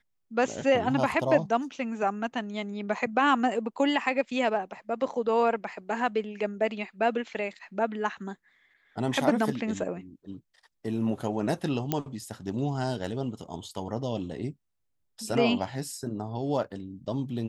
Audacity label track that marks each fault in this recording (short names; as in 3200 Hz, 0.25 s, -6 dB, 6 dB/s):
11.920000	11.920000	pop -12 dBFS